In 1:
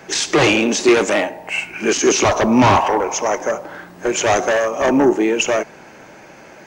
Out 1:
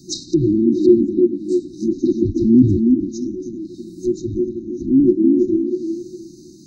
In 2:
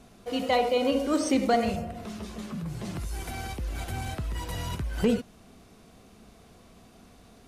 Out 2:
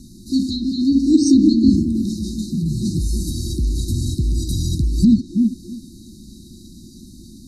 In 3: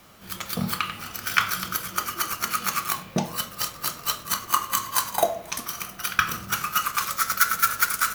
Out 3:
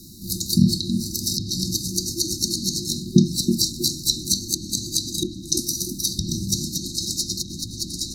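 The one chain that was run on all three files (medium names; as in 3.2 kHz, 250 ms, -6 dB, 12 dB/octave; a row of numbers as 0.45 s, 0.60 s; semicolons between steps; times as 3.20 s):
low-pass that closes with the level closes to 770 Hz, closed at -13.5 dBFS; FFT band-reject 370–3700 Hz; repeats whose band climbs or falls 322 ms, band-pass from 290 Hz, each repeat 0.7 oct, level -3 dB; peak normalisation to -2 dBFS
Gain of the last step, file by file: +3.0 dB, +13.5 dB, +12.0 dB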